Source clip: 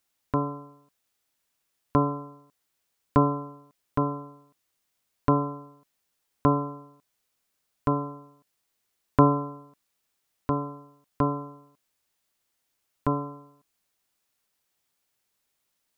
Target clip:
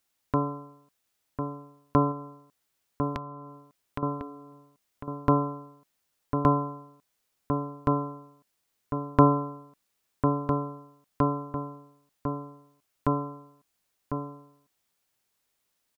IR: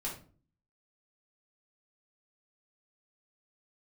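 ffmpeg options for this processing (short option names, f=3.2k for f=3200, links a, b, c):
-filter_complex "[0:a]asettb=1/sr,asplit=3[a][b][c];[a]atrim=end=2.114[d];[b]atrim=start=2.11:end=4.03,asetpts=PTS-STARTPTS,afade=t=in:d=0.004:c=qsin,afade=t=out:st=1.916:d=0.004:c=qsin,acompressor=threshold=-32dB:ratio=16[e];[c]atrim=start=4.026[f];[d][e]acrossfade=d=0.004:c1=hsin:c2=qsin[g];[g][f]acrossfade=d=0.004:c1=qsin:c2=hsin,asplit=2[h][i];[i]adelay=1050,volume=-6dB,highshelf=f=4k:g=-23.6[j];[h][j]amix=inputs=2:normalize=0"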